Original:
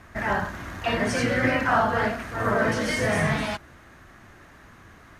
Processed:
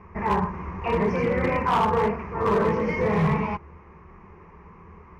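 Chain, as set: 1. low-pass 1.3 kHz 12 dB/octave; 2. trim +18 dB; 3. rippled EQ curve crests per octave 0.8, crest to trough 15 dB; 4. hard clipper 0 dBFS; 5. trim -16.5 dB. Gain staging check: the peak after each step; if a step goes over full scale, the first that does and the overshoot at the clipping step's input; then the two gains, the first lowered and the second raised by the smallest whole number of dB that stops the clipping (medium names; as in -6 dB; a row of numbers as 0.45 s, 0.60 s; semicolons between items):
-11.0 dBFS, +7.0 dBFS, +9.5 dBFS, 0.0 dBFS, -16.5 dBFS; step 2, 9.5 dB; step 2 +8 dB, step 5 -6.5 dB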